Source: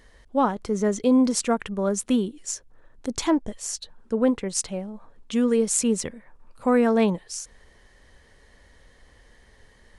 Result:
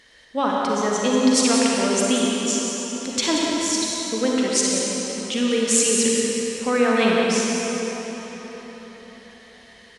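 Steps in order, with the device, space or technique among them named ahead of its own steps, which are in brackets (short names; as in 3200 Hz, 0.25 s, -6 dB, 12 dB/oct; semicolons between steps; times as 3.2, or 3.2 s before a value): cave (echo 0.182 s -8.5 dB; reverb RT60 4.7 s, pre-delay 39 ms, DRR -3.5 dB); weighting filter D; gain -2 dB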